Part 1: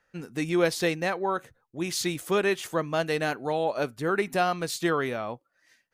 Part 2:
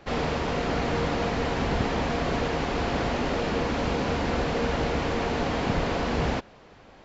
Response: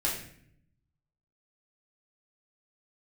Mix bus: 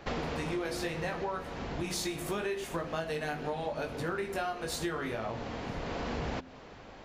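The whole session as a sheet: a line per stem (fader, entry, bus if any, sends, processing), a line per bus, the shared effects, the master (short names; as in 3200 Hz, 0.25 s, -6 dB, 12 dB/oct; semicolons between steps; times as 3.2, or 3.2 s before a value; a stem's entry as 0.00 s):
+2.0 dB, 0.00 s, send -11.5 dB, chorus 0.74 Hz, delay 17.5 ms, depth 2.7 ms
+1.5 dB, 0.00 s, no send, de-hum 86.48 Hz, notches 4; auto duck -13 dB, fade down 1.55 s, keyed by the first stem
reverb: on, RT60 0.65 s, pre-delay 5 ms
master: compressor 6:1, threshold -32 dBFS, peak gain reduction 14 dB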